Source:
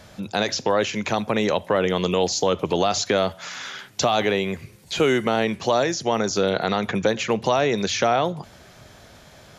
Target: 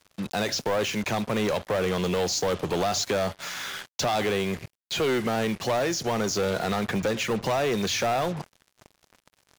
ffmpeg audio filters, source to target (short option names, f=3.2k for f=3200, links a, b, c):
-af "acrusher=bits=5:mix=0:aa=0.5,asoftclip=type=tanh:threshold=-20.5dB"